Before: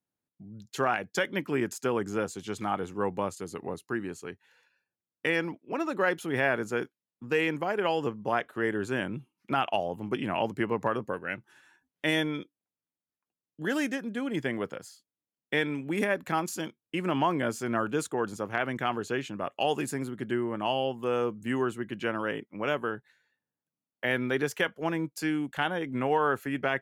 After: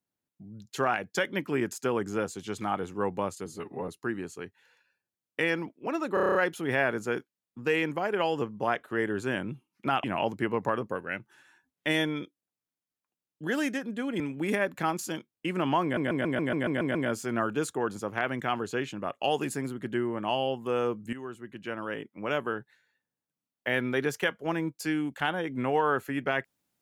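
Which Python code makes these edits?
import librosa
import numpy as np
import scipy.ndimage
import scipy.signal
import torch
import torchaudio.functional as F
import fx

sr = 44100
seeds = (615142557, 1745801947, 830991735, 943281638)

y = fx.edit(x, sr, fx.stretch_span(start_s=3.46, length_s=0.28, factor=1.5),
    fx.stutter(start_s=6.0, slice_s=0.03, count=8),
    fx.cut(start_s=9.69, length_s=0.53),
    fx.cut(start_s=14.38, length_s=1.31),
    fx.stutter(start_s=17.32, slice_s=0.14, count=9),
    fx.fade_in_from(start_s=21.5, length_s=1.3, floor_db=-14.0), tone=tone)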